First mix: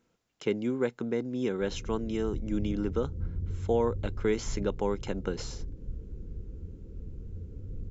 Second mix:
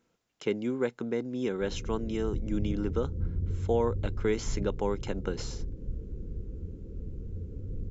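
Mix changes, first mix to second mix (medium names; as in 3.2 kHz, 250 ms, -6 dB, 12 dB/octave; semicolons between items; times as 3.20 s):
background +5.0 dB; master: add bass shelf 180 Hz -3 dB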